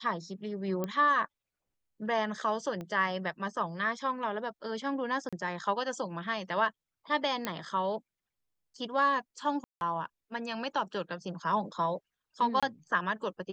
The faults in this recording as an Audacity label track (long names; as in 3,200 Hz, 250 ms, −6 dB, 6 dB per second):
0.840000	0.840000	click −20 dBFS
2.810000	2.810000	click −27 dBFS
5.290000	5.330000	drop-out 36 ms
7.450000	7.450000	click −16 dBFS
9.640000	9.810000	drop-out 171 ms
12.600000	12.630000	drop-out 26 ms